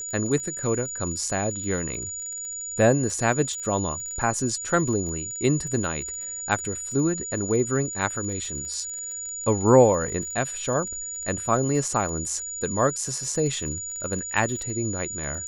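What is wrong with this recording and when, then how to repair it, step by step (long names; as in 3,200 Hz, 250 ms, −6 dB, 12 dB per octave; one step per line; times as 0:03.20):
surface crackle 26 per second −33 dBFS
whistle 6,900 Hz −31 dBFS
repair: click removal
notch filter 6,900 Hz, Q 30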